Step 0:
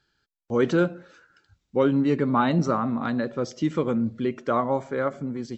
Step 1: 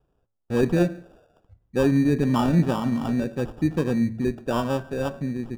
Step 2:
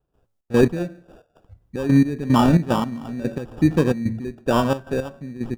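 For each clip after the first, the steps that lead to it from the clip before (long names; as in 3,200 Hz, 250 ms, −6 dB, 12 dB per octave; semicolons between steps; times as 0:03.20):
decimation without filtering 21×; spectral tilt −3 dB per octave; hum removal 111.3 Hz, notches 18; level −3.5 dB
gate pattern ".xx.x...x.xxx.x." 111 BPM −12 dB; level +6 dB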